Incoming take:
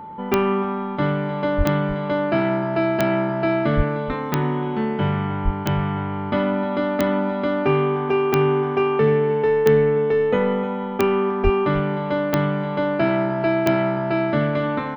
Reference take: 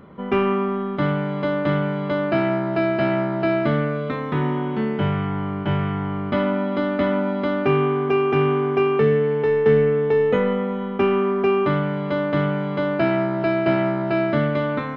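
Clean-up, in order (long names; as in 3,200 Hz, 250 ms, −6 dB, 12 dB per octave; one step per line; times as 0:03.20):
click removal
notch filter 880 Hz, Q 30
high-pass at the plosives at 0:01.57/0:03.76/0:05.44/0:11.43
echo removal 305 ms −15 dB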